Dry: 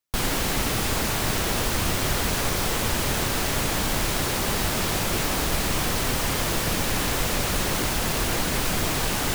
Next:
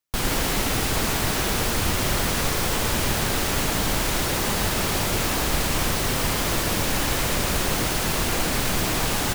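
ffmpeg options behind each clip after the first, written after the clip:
-af "aecho=1:1:113:0.562"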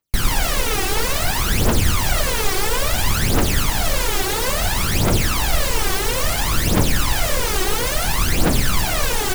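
-af "aphaser=in_gain=1:out_gain=1:delay=2.7:decay=0.72:speed=0.59:type=triangular"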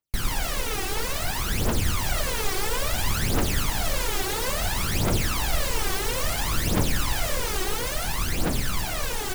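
-af "dynaudnorm=f=230:g=17:m=1.78,volume=0.398"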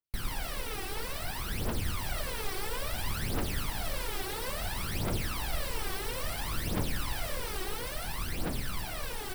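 -af "equalizer=f=6700:t=o:w=0.33:g=-8.5,volume=0.376"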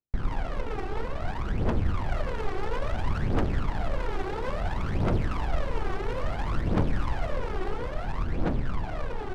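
-af "adynamicsmooth=sensitivity=4:basefreq=640,volume=2.37"

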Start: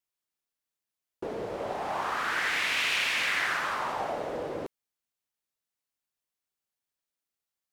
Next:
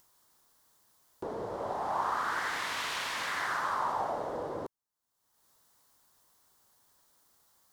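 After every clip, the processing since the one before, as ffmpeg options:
-af "equalizer=f=100:t=o:w=0.67:g=3,equalizer=f=1000:t=o:w=0.67:g=7,equalizer=f=2500:t=o:w=0.67:g=-11,acompressor=mode=upward:threshold=0.00708:ratio=2.5,volume=0.668"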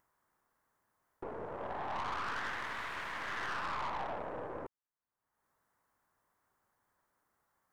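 -af "highshelf=f=2700:t=q:w=1.5:g=-12,aeval=exprs='(tanh(39.8*val(0)+0.7)-tanh(0.7))/39.8':c=same,volume=0.794"

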